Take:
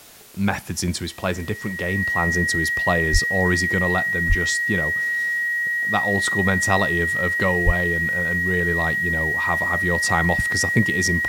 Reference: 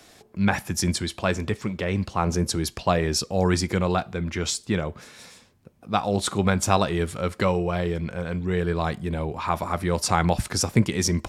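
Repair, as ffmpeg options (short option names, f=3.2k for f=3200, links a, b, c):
-filter_complex "[0:a]bandreject=f=1.9k:w=30,asplit=3[a][b][c];[a]afade=t=out:st=3.12:d=0.02[d];[b]highpass=f=140:w=0.5412,highpass=f=140:w=1.3066,afade=t=in:st=3.12:d=0.02,afade=t=out:st=3.24:d=0.02[e];[c]afade=t=in:st=3.24:d=0.02[f];[d][e][f]amix=inputs=3:normalize=0,asplit=3[g][h][i];[g]afade=t=out:st=4.28:d=0.02[j];[h]highpass=f=140:w=0.5412,highpass=f=140:w=1.3066,afade=t=in:st=4.28:d=0.02,afade=t=out:st=4.4:d=0.02[k];[i]afade=t=in:st=4.4:d=0.02[l];[j][k][l]amix=inputs=3:normalize=0,asplit=3[m][n][o];[m]afade=t=out:st=7.65:d=0.02[p];[n]highpass=f=140:w=0.5412,highpass=f=140:w=1.3066,afade=t=in:st=7.65:d=0.02,afade=t=out:st=7.77:d=0.02[q];[o]afade=t=in:st=7.77:d=0.02[r];[p][q][r]amix=inputs=3:normalize=0,afwtdn=0.005"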